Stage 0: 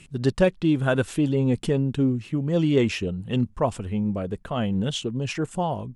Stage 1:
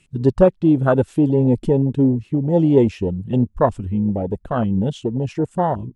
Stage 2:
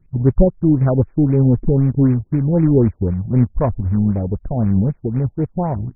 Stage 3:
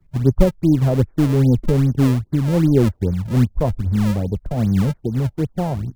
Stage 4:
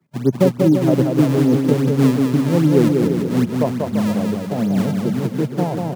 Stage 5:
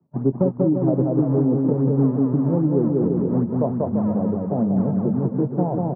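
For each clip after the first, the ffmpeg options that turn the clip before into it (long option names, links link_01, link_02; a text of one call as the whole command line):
ffmpeg -i in.wav -af "afwtdn=0.0631,equalizer=frequency=160:width_type=o:width=1.5:gain=-2.5,volume=7.5dB" out.wav
ffmpeg -i in.wav -af "acrusher=bits=3:mode=log:mix=0:aa=0.000001,aemphasis=mode=reproduction:type=riaa,afftfilt=real='re*lt(b*sr/1024,850*pow(2600/850,0.5+0.5*sin(2*PI*3.9*pts/sr)))':imag='im*lt(b*sr/1024,850*pow(2600/850,0.5+0.5*sin(2*PI*3.9*pts/sr)))':win_size=1024:overlap=0.75,volume=-6dB" out.wav
ffmpeg -i in.wav -filter_complex "[0:a]acrossover=split=160|230|980[link_01][link_02][link_03][link_04];[link_02]acrusher=samples=34:mix=1:aa=0.000001:lfo=1:lforange=54.4:lforate=2.5[link_05];[link_04]acompressor=threshold=-48dB:ratio=6[link_06];[link_01][link_05][link_03][link_06]amix=inputs=4:normalize=0,volume=-1dB" out.wav
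ffmpeg -i in.wav -af "highpass=frequency=160:width=0.5412,highpass=frequency=160:width=1.3066,aecho=1:1:190|342|463.6|560.9|638.7:0.631|0.398|0.251|0.158|0.1,volume=1.5dB" out.wav
ffmpeg -i in.wav -filter_complex "[0:a]lowpass=frequency=1000:width=0.5412,lowpass=frequency=1000:width=1.3066,acompressor=threshold=-16dB:ratio=4,asplit=2[link_01][link_02];[link_02]adelay=22,volume=-13.5dB[link_03];[link_01][link_03]amix=inputs=2:normalize=0" out.wav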